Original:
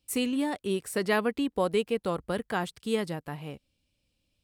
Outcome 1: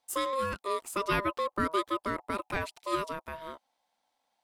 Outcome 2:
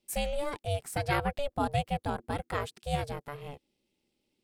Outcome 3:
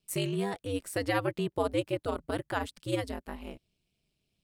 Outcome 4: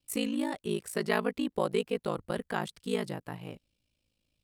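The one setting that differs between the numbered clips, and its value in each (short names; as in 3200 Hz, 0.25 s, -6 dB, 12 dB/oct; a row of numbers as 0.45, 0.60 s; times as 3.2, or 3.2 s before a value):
ring modulator, frequency: 800, 290, 100, 27 Hz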